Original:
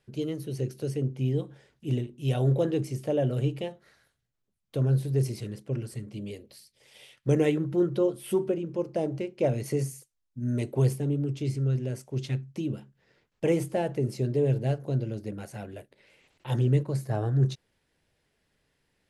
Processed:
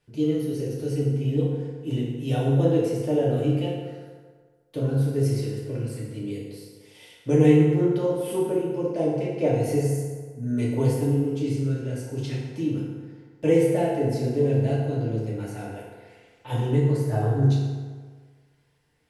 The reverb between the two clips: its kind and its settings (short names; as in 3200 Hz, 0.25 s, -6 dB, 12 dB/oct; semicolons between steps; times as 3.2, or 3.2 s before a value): FDN reverb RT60 1.6 s, low-frequency decay 0.85×, high-frequency decay 0.6×, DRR -6 dB; gain -3 dB